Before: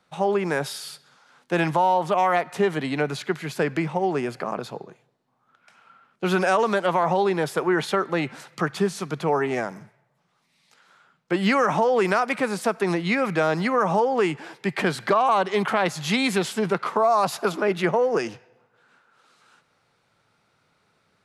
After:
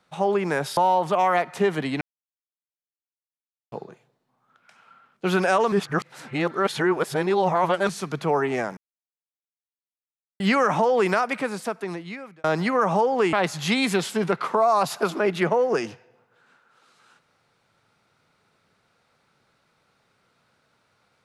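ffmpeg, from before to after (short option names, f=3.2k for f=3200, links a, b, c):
-filter_complex "[0:a]asplit=10[a][b][c][d][e][f][g][h][i][j];[a]atrim=end=0.772[k];[b]atrim=start=1.758:end=3,asetpts=PTS-STARTPTS,afade=t=out:st=1.238:d=0.004:c=hsin[l];[c]atrim=start=3:end=4.71,asetpts=PTS-STARTPTS,volume=0[m];[d]atrim=start=4.71:end=6.712,asetpts=PTS-STARTPTS,afade=t=in:d=0.004:c=hsin[n];[e]atrim=start=6.708:end=8.882,asetpts=PTS-STARTPTS,areverse[o];[f]atrim=start=8.878:end=9.76,asetpts=PTS-STARTPTS,afade=t=out:st=0.878:d=0.004:c=hsin[p];[g]atrim=start=9.76:end=11.39,asetpts=PTS-STARTPTS,volume=0[q];[h]atrim=start=11.39:end=13.43,asetpts=PTS-STARTPTS,afade=t=in:d=0.004:c=hsin,afade=t=out:st=0.67:d=1.37[r];[i]atrim=start=13.43:end=14.322,asetpts=PTS-STARTPTS,afade=t=in:d=0.004:c=hsin[s];[j]atrim=start=15.748[t];[l][m][n]concat=n=3:v=0:a=1[u];[k][u]acrossfade=d=0.004:c1=hsin:c2=hsin[v];[v][o]acrossfade=d=0.004:c1=hsin:c2=hsin[w];[p][q][r][s]concat=n=4:v=0:a=1[x];[w][x]acrossfade=d=0.004:c1=hsin:c2=hsin[y];[y][t]acrossfade=d=0.004:c1=hsin:c2=hsin"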